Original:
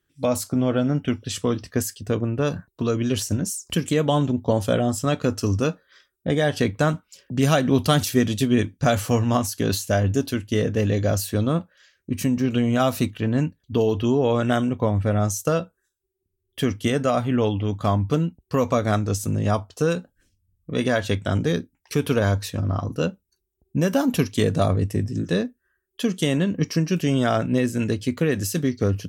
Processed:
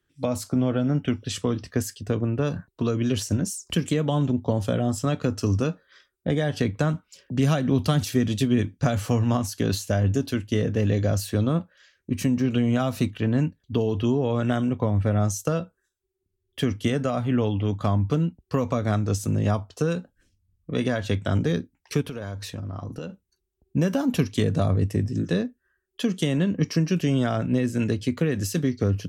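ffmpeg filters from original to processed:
-filter_complex "[0:a]asplit=3[s0][s1][s2];[s0]afade=t=out:st=22.01:d=0.02[s3];[s1]acompressor=threshold=0.0355:ratio=16:attack=3.2:release=140:knee=1:detection=peak,afade=t=in:st=22.01:d=0.02,afade=t=out:st=23.09:d=0.02[s4];[s2]afade=t=in:st=23.09:d=0.02[s5];[s3][s4][s5]amix=inputs=3:normalize=0,highshelf=f=9500:g=-8.5,acrossover=split=240[s6][s7];[s7]acompressor=threshold=0.0631:ratio=5[s8];[s6][s8]amix=inputs=2:normalize=0"

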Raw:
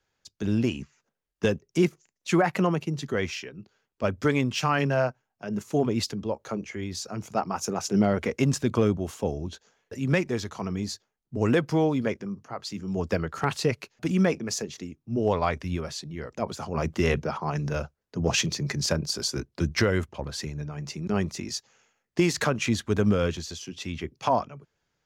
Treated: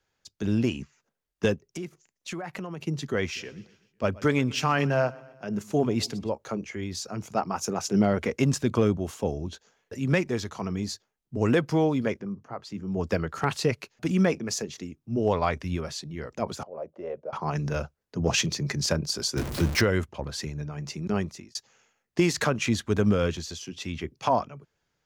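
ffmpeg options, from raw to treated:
-filter_complex "[0:a]asplit=3[s0][s1][s2];[s0]afade=t=out:st=1.54:d=0.02[s3];[s1]acompressor=threshold=0.02:ratio=4:attack=3.2:release=140:knee=1:detection=peak,afade=t=in:st=1.54:d=0.02,afade=t=out:st=2.79:d=0.02[s4];[s2]afade=t=in:st=2.79:d=0.02[s5];[s3][s4][s5]amix=inputs=3:normalize=0,asplit=3[s6][s7][s8];[s6]afade=t=out:st=3.35:d=0.02[s9];[s7]aecho=1:1:125|250|375|500:0.0794|0.0445|0.0249|0.0139,afade=t=in:st=3.35:d=0.02,afade=t=out:st=6.28:d=0.02[s10];[s8]afade=t=in:st=6.28:d=0.02[s11];[s9][s10][s11]amix=inputs=3:normalize=0,asplit=3[s12][s13][s14];[s12]afade=t=out:st=12.19:d=0.02[s15];[s13]highshelf=f=2600:g=-11,afade=t=in:st=12.19:d=0.02,afade=t=out:st=12.99:d=0.02[s16];[s14]afade=t=in:st=12.99:d=0.02[s17];[s15][s16][s17]amix=inputs=3:normalize=0,asettb=1/sr,asplit=3[s18][s19][s20];[s18]atrim=end=16.634[s21];[s19]atrim=start=16.63:end=17.33,asetpts=PTS-STARTPTS,afade=t=in:d=0.004:c=qsin,afade=t=out:st=0.696:d=0.004:c=qsin,bandpass=f=570:t=q:w=5[s22];[s20]atrim=start=17.326[s23];[s21][s22]acrossfade=d=0.004:c1=hsin:c2=qsin[s24];[s24][s23]acrossfade=d=0.004:c1=qsin:c2=hsin,asettb=1/sr,asplit=3[s25][s26][s27];[s25]atrim=end=19.374[s28];[s26]atrim=start=19.37:end=19.81,asetpts=PTS-STARTPTS,afade=t=in:d=0.004:c=qsin,afade=t=out:st=0.436:d=0.004:c=qsin,aeval=exprs='val(0)+0.5*0.0447*sgn(val(0))':c=same[s29];[s27]atrim=start=19.806[s30];[s28][s29]acrossfade=d=0.004:c1=hsin:c2=qsin[s31];[s31][s30]acrossfade=d=0.004:c1=qsin:c2=hsin,asplit=2[s32][s33];[s32]atrim=end=21.55,asetpts=PTS-STARTPTS,afade=t=out:st=21.11:d=0.44[s34];[s33]atrim=start=21.55,asetpts=PTS-STARTPTS,afade=t=in:d=0.004:c=hsin[s35];[s34][s35]concat=n=2:v=0:a=1"

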